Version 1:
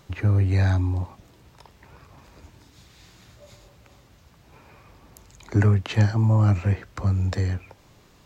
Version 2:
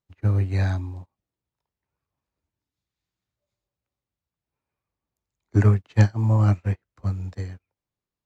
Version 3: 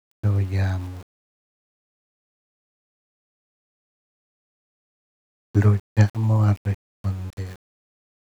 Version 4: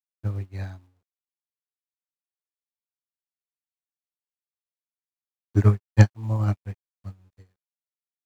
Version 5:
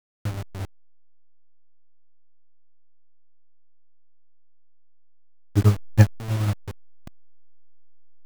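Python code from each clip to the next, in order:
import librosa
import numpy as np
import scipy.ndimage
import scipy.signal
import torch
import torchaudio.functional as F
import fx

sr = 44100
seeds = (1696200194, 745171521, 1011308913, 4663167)

y1 = fx.upward_expand(x, sr, threshold_db=-41.0, expansion=2.5)
y1 = F.gain(torch.from_numpy(y1), 4.0).numpy()
y2 = np.where(np.abs(y1) >= 10.0 ** (-37.5 / 20.0), y1, 0.0)
y3 = fx.upward_expand(y2, sr, threshold_db=-38.0, expansion=2.5)
y3 = F.gain(torch.from_numpy(y3), 3.5).numpy()
y4 = fx.delta_hold(y3, sr, step_db=-27.0)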